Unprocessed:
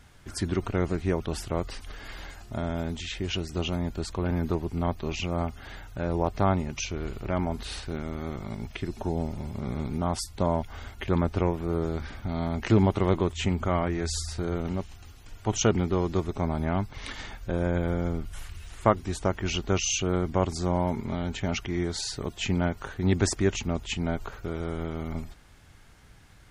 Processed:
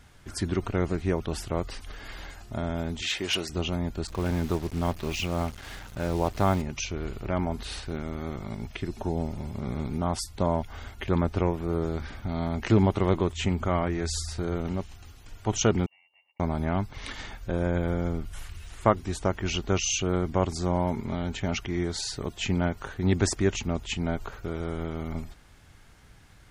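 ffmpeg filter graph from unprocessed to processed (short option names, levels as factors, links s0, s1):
-filter_complex "[0:a]asettb=1/sr,asplit=3[s0][s1][s2];[s0]atrim=end=3.024[s3];[s1]atrim=start=3.02:end=3.49,asetpts=PTS-STARTPTS,afade=t=in:d=0.004:c=qsin,afade=t=out:st=0.466:d=0.004:c=qsin,highpass=f=640:p=1,aeval=exprs='0.106*sin(PI/2*1.58*val(0)/0.106)':c=same[s4];[s2]atrim=start=3.486[s5];[s3][s4]acrossfade=d=0.004:c1=hsin:c2=qsin[s6];[s6][s5]acrossfade=d=0.004:c1=qsin:c2=hsin,asettb=1/sr,asplit=3[s7][s8][s9];[s7]atrim=end=4.074[s10];[s8]atrim=start=4.07:end=6.62,asetpts=PTS-STARTPTS,afade=t=in:d=0.004:c=qsin,afade=t=out:st=2.546:d=0.004:c=qsin,acrusher=bits=6:mix=0:aa=0.5,adynamicequalizer=threshold=0.00891:dfrequency=1800:dqfactor=0.7:tfrequency=1800:tqfactor=0.7:attack=5:release=100:ratio=0.375:range=1.5:mode=boostabove:tftype=highshelf[s11];[s9]atrim=start=6.616[s12];[s10][s11]acrossfade=d=0.004:c1=hsin:c2=qsin[s13];[s13][s12]acrossfade=d=0.004:c1=qsin:c2=hsin,asettb=1/sr,asplit=3[s14][s15][s16];[s14]atrim=end=15.864[s17];[s15]atrim=start=15.86:end=16.4,asetpts=PTS-STARTPTS,afade=t=in:d=0.004:c=qsin,afade=t=out:st=0.536:d=0.004:c=qsin,asplit=3[s18][s19][s20];[s18]bandpass=f=300:t=q:w=8,volume=1[s21];[s19]bandpass=f=870:t=q:w=8,volume=0.501[s22];[s20]bandpass=f=2240:t=q:w=8,volume=0.355[s23];[s21][s22][s23]amix=inputs=3:normalize=0,aderivative,lowpass=f=2600:t=q:w=0.5098,lowpass=f=2600:t=q:w=0.6013,lowpass=f=2600:t=q:w=0.9,lowpass=f=2600:t=q:w=2.563,afreqshift=-3100[s24];[s16]atrim=start=16.396[s25];[s17][s24]acrossfade=d=0.004:c1=hsin:c2=qsin[s26];[s26][s25]acrossfade=d=0.004:c1=qsin:c2=hsin"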